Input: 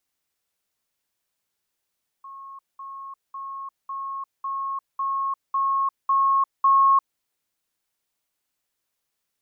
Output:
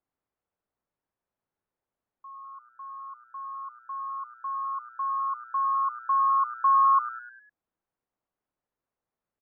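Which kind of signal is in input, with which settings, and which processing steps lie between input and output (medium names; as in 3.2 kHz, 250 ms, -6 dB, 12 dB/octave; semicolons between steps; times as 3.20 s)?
level ladder 1.09 kHz -37.5 dBFS, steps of 3 dB, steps 9, 0.35 s 0.20 s
low-pass 1.1 kHz 12 dB/octave; frequency-shifting echo 101 ms, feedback 50%, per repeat +120 Hz, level -14 dB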